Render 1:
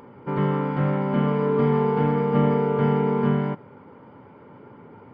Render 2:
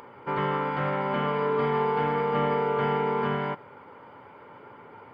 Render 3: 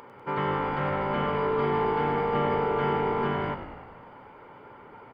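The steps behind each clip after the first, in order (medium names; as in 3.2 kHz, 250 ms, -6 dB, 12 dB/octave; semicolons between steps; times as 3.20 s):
peaking EQ 210 Hz -6 dB 1.5 oct; in parallel at -1 dB: peak limiter -20.5 dBFS, peak gain reduction 7.5 dB; on the sum: bass shelf 460 Hz -11 dB
frequency-shifting echo 98 ms, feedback 62%, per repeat -54 Hz, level -10 dB; trim -1 dB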